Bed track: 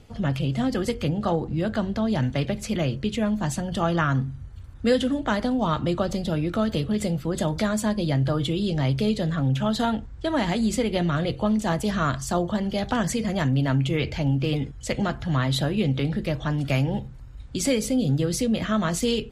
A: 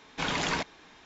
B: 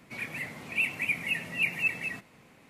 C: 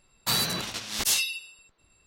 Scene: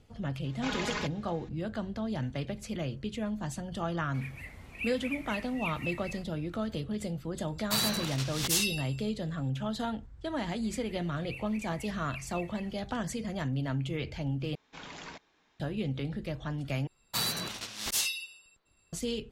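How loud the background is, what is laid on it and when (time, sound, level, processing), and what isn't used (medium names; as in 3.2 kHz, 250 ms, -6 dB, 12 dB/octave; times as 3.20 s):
bed track -10 dB
0.44 s: add A -7.5 dB + comb 4.8 ms, depth 86%
4.03 s: add B -10 dB
7.44 s: add C -4 dB
10.53 s: add B -17.5 dB
14.55 s: replace with A -15.5 dB
16.87 s: replace with C -5.5 dB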